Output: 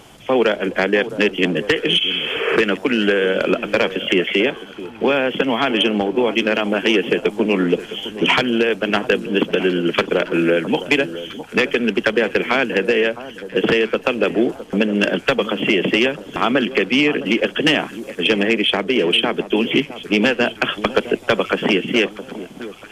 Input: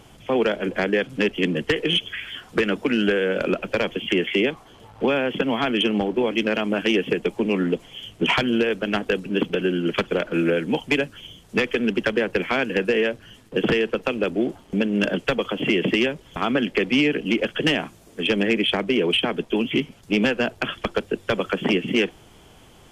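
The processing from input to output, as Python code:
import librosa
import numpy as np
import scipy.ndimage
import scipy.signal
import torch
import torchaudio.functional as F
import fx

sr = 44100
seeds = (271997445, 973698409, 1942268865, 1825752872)

p1 = fx.spec_repair(x, sr, seeds[0], start_s=2.04, length_s=0.5, low_hz=370.0, high_hz=3400.0, source='both')
p2 = fx.low_shelf(p1, sr, hz=160.0, db=-9.5)
p3 = fx.rider(p2, sr, range_db=10, speed_s=0.5)
p4 = p2 + (p3 * librosa.db_to_amplitude(-0.5))
y = fx.echo_alternate(p4, sr, ms=661, hz=1200.0, feedback_pct=59, wet_db=-13)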